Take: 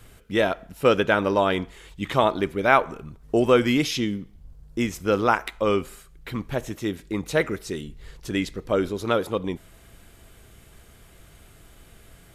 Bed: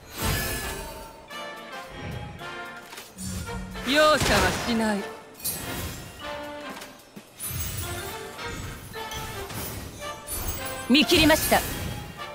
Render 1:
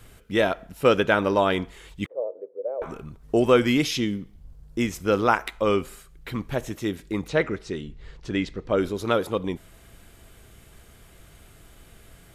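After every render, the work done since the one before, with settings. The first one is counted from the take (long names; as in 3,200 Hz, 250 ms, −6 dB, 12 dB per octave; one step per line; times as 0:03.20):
0:02.06–0:02.82: flat-topped band-pass 510 Hz, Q 4.3
0:07.28–0:08.78: high-frequency loss of the air 100 metres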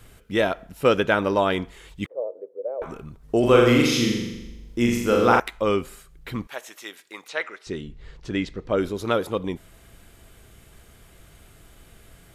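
0:03.39–0:05.40: flutter between parallel walls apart 7.2 metres, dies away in 1 s
0:06.47–0:07.67: high-pass filter 890 Hz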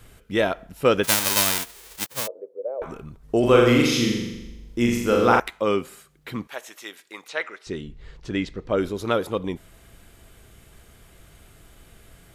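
0:01.03–0:02.26: spectral envelope flattened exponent 0.1
0:05.50–0:06.60: high-pass filter 120 Hz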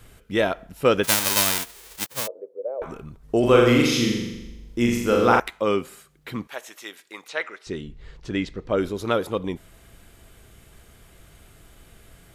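no processing that can be heard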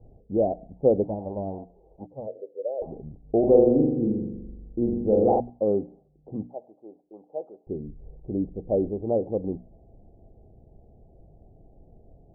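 Chebyshev low-pass filter 790 Hz, order 6
mains-hum notches 60/120/180/240/300 Hz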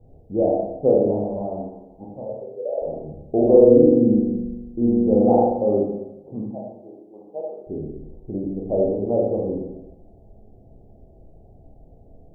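four-comb reverb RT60 0.95 s, combs from 26 ms, DRR −3 dB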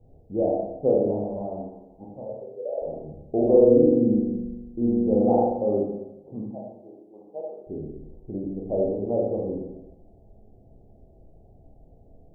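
level −4 dB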